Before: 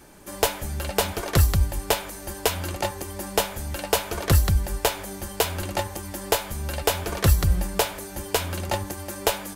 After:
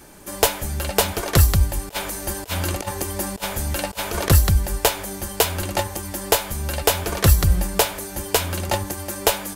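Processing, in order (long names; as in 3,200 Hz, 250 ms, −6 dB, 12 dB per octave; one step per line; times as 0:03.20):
high-shelf EQ 5,600 Hz +3.5 dB
0:01.89–0:04.30: compressor whose output falls as the input rises −29 dBFS, ratio −0.5
level +3.5 dB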